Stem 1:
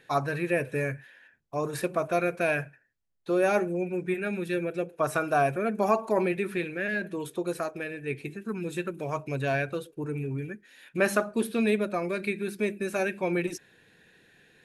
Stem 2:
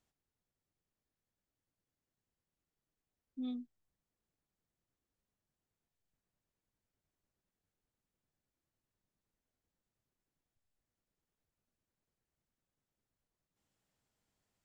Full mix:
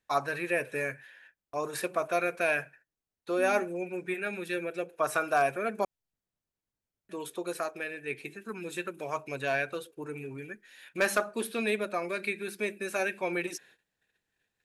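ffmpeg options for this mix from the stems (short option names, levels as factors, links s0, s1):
-filter_complex "[0:a]highpass=f=650:p=1,agate=range=0.0447:threshold=0.00141:ratio=16:detection=peak,aeval=exprs='0.158*(abs(mod(val(0)/0.158+3,4)-2)-1)':c=same,volume=1.12,asplit=3[s0][s1][s2];[s0]atrim=end=5.85,asetpts=PTS-STARTPTS,afade=t=out:st=5.846:d=0.004:c=hsin[s3];[s1]atrim=start=5.85:end=7.09,asetpts=PTS-STARTPTS,volume=0[s4];[s2]atrim=start=7.09,asetpts=PTS-STARTPTS,afade=t=in:d=0.004:c=hsin[s5];[s3][s4][s5]concat=n=3:v=0:a=1[s6];[1:a]volume=0.75[s7];[s6][s7]amix=inputs=2:normalize=0"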